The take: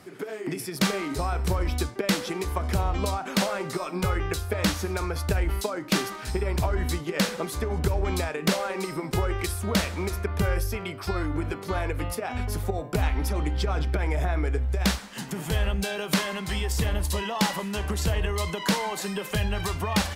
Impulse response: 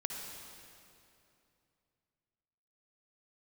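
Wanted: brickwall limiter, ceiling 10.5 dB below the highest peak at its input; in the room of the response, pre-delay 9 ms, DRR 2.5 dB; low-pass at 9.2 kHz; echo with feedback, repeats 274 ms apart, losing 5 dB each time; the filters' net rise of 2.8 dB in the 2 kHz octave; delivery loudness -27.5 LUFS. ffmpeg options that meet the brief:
-filter_complex "[0:a]lowpass=9200,equalizer=f=2000:t=o:g=3.5,alimiter=limit=0.0841:level=0:latency=1,aecho=1:1:274|548|822|1096|1370|1644|1918:0.562|0.315|0.176|0.0988|0.0553|0.031|0.0173,asplit=2[s0][s1];[1:a]atrim=start_sample=2205,adelay=9[s2];[s1][s2]afir=irnorm=-1:irlink=0,volume=0.631[s3];[s0][s3]amix=inputs=2:normalize=0,volume=1.06"

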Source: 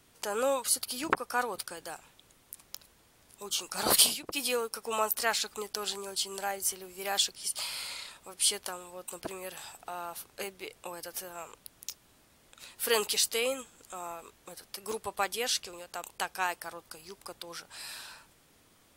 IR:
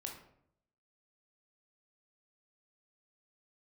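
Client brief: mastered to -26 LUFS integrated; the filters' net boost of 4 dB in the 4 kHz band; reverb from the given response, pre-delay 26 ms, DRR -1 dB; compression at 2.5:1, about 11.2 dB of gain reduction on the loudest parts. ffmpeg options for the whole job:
-filter_complex "[0:a]equalizer=f=4000:t=o:g=5,acompressor=threshold=0.0224:ratio=2.5,asplit=2[s0][s1];[1:a]atrim=start_sample=2205,adelay=26[s2];[s1][s2]afir=irnorm=-1:irlink=0,volume=1.5[s3];[s0][s3]amix=inputs=2:normalize=0,volume=2.24"

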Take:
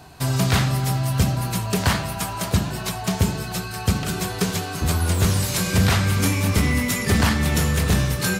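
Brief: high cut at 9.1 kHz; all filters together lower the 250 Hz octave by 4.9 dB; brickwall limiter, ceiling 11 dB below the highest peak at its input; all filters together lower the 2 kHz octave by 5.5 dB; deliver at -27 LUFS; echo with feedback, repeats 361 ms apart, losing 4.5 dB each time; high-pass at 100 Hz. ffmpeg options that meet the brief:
-af "highpass=100,lowpass=9100,equalizer=f=250:t=o:g=-7,equalizer=f=2000:t=o:g=-7,alimiter=limit=0.1:level=0:latency=1,aecho=1:1:361|722|1083|1444|1805|2166|2527|2888|3249:0.596|0.357|0.214|0.129|0.0772|0.0463|0.0278|0.0167|0.01,volume=1.06"

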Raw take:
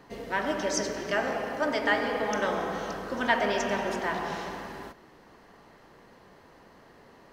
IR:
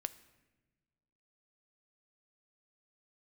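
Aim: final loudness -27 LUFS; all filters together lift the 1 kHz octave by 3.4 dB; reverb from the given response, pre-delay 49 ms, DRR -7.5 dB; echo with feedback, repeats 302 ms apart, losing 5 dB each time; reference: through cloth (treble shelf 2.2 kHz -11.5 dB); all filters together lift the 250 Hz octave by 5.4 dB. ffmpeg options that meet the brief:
-filter_complex "[0:a]equalizer=f=250:t=o:g=6.5,equalizer=f=1000:t=o:g=6,aecho=1:1:302|604|906|1208|1510|1812|2114:0.562|0.315|0.176|0.0988|0.0553|0.031|0.0173,asplit=2[s0][s1];[1:a]atrim=start_sample=2205,adelay=49[s2];[s1][s2]afir=irnorm=-1:irlink=0,volume=2.82[s3];[s0][s3]amix=inputs=2:normalize=0,highshelf=f=2200:g=-11.5,volume=0.335"

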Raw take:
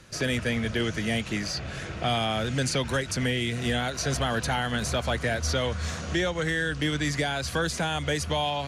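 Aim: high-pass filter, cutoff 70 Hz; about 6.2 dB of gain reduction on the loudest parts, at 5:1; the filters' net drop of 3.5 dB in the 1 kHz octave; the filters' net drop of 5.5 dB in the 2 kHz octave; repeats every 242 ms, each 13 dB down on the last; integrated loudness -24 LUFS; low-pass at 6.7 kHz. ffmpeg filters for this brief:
-af "highpass=70,lowpass=6700,equalizer=f=1000:t=o:g=-4,equalizer=f=2000:t=o:g=-5.5,acompressor=threshold=0.0282:ratio=5,aecho=1:1:242|484|726:0.224|0.0493|0.0108,volume=3.35"

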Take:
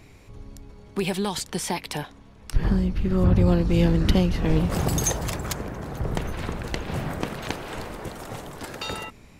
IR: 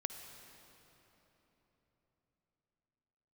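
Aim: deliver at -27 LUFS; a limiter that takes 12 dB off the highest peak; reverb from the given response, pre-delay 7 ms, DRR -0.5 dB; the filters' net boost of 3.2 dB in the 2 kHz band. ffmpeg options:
-filter_complex "[0:a]equalizer=f=2000:t=o:g=4,alimiter=limit=0.126:level=0:latency=1,asplit=2[s0][s1];[1:a]atrim=start_sample=2205,adelay=7[s2];[s1][s2]afir=irnorm=-1:irlink=0,volume=1.12[s3];[s0][s3]amix=inputs=2:normalize=0"

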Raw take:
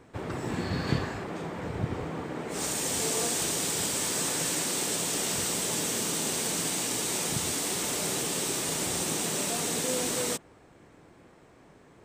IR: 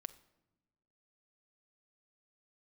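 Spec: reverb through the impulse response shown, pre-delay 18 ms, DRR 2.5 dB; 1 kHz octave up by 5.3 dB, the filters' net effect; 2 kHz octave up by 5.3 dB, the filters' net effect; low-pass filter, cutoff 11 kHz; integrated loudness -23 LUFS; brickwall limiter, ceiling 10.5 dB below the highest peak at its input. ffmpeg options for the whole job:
-filter_complex "[0:a]lowpass=11000,equalizer=f=1000:t=o:g=5.5,equalizer=f=2000:t=o:g=5,alimiter=limit=0.0794:level=0:latency=1,asplit=2[s0][s1];[1:a]atrim=start_sample=2205,adelay=18[s2];[s1][s2]afir=irnorm=-1:irlink=0,volume=1.19[s3];[s0][s3]amix=inputs=2:normalize=0,volume=1.88"

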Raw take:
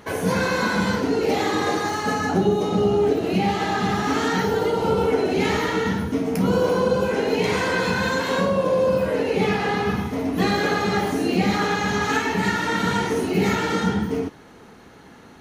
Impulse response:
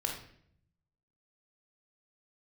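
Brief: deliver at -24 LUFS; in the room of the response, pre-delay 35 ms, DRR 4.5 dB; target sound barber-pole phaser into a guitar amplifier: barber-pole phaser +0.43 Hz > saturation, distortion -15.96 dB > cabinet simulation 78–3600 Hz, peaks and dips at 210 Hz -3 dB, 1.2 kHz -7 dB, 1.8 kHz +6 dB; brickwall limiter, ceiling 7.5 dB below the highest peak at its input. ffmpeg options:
-filter_complex "[0:a]alimiter=limit=0.158:level=0:latency=1,asplit=2[s0][s1];[1:a]atrim=start_sample=2205,adelay=35[s2];[s1][s2]afir=irnorm=-1:irlink=0,volume=0.398[s3];[s0][s3]amix=inputs=2:normalize=0,asplit=2[s4][s5];[s5]afreqshift=0.43[s6];[s4][s6]amix=inputs=2:normalize=1,asoftclip=threshold=0.0891,highpass=78,equalizer=f=210:t=q:w=4:g=-3,equalizer=f=1200:t=q:w=4:g=-7,equalizer=f=1800:t=q:w=4:g=6,lowpass=f=3600:w=0.5412,lowpass=f=3600:w=1.3066,volume=1.68"

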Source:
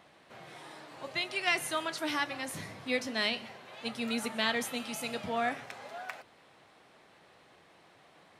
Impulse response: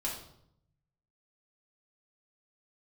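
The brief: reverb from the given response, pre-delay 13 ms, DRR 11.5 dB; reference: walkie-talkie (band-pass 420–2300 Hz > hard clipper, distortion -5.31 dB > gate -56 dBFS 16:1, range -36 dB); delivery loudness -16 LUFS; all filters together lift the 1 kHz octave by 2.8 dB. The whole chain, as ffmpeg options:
-filter_complex "[0:a]equalizer=f=1000:t=o:g=4.5,asplit=2[s0][s1];[1:a]atrim=start_sample=2205,adelay=13[s2];[s1][s2]afir=irnorm=-1:irlink=0,volume=0.188[s3];[s0][s3]amix=inputs=2:normalize=0,highpass=420,lowpass=2300,asoftclip=type=hard:threshold=0.02,agate=range=0.0158:threshold=0.00158:ratio=16,volume=15"

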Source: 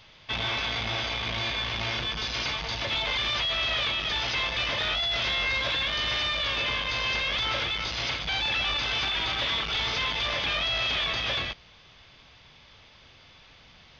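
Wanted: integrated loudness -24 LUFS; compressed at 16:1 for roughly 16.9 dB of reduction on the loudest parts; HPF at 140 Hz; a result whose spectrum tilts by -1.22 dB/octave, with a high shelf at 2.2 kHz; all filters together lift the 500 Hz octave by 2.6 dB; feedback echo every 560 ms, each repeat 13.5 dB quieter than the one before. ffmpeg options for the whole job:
-af "highpass=140,equalizer=f=500:t=o:g=3,highshelf=f=2200:g=4.5,acompressor=threshold=0.01:ratio=16,aecho=1:1:560|1120:0.211|0.0444,volume=6.68"

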